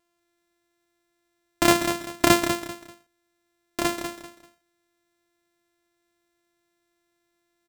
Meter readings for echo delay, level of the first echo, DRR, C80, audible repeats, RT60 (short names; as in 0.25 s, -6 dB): 0.195 s, -8.0 dB, none, none, 3, none